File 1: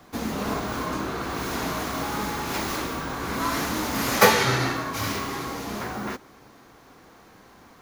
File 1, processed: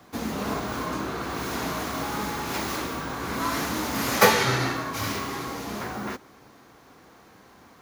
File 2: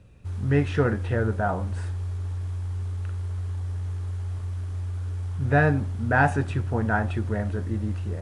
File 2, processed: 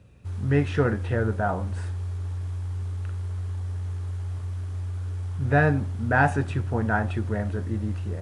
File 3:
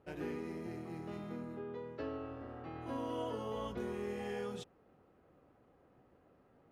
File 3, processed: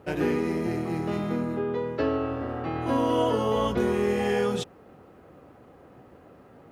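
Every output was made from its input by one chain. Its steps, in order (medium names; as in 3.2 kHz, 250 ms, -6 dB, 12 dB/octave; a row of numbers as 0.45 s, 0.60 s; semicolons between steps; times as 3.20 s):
high-pass 50 Hz; normalise loudness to -27 LUFS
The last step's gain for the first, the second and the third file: -1.0 dB, 0.0 dB, +15.5 dB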